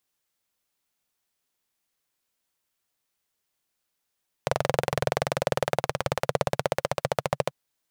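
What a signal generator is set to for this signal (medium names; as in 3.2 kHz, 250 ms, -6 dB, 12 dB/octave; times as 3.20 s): single-cylinder engine model, changing speed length 3.04 s, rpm 2700, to 1600, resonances 140/540 Hz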